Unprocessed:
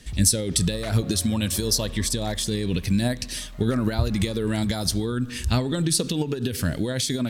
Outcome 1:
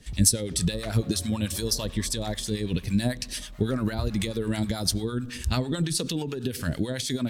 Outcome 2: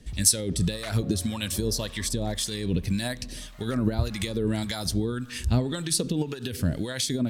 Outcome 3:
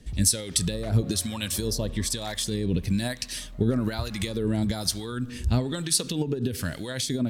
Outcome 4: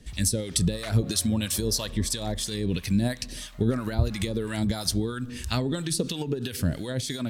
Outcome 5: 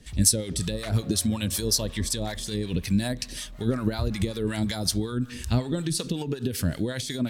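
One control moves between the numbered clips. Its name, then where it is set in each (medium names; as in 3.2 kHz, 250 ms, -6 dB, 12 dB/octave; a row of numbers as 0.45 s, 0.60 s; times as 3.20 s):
harmonic tremolo, rate: 9.1 Hz, 1.8 Hz, 1.1 Hz, 3 Hz, 5.4 Hz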